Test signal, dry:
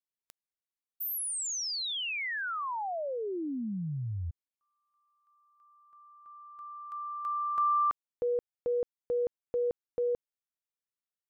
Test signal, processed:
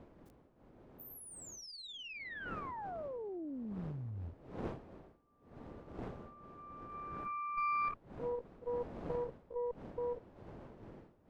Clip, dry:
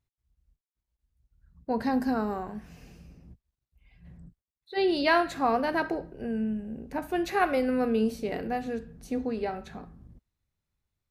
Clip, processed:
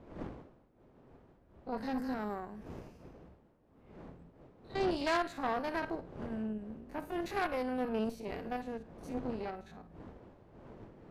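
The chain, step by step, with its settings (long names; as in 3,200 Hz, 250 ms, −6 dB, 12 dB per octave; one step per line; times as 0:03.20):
spectrum averaged block by block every 50 ms
wind on the microphone 440 Hz −44 dBFS
harmonic generator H 6 −16 dB, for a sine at −12 dBFS
level −8 dB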